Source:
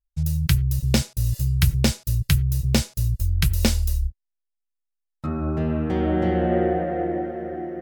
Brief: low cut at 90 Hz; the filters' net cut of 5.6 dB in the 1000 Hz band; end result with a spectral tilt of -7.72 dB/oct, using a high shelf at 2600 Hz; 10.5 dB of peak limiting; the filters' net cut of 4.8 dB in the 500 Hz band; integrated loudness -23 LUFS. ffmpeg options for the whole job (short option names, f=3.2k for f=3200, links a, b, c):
-af "highpass=90,equalizer=f=500:t=o:g=-5.5,equalizer=f=1k:t=o:g=-4.5,highshelf=f=2.6k:g=-8.5,volume=6dB,alimiter=limit=-13dB:level=0:latency=1"